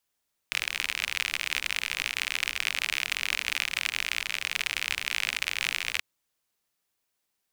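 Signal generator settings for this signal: rain from filtered ticks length 5.48 s, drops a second 57, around 2400 Hz, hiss -20.5 dB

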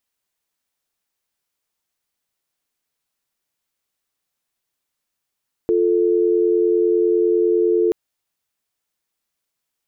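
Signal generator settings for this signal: call progress tone dial tone, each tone -16.5 dBFS 2.23 s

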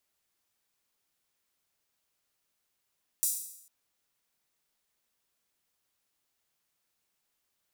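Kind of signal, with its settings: open hi-hat length 0.45 s, high-pass 7800 Hz, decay 0.75 s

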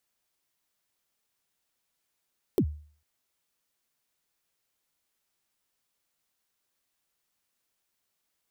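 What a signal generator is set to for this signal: kick drum length 0.45 s, from 450 Hz, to 75 Hz, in 71 ms, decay 0.46 s, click on, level -17 dB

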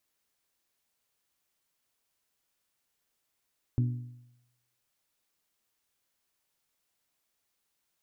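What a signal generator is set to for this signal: metal hit bell, lowest mode 122 Hz, modes 4, decay 0.85 s, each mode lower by 8.5 dB, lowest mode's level -21.5 dB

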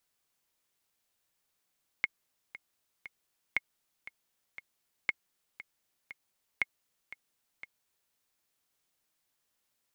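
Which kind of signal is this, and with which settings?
metronome 118 bpm, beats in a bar 3, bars 4, 2160 Hz, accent 16.5 dB -14 dBFS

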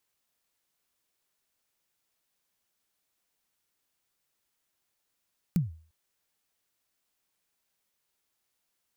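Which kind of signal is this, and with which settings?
kick drum length 0.35 s, from 190 Hz, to 80 Hz, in 0.15 s, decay 0.42 s, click on, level -18.5 dB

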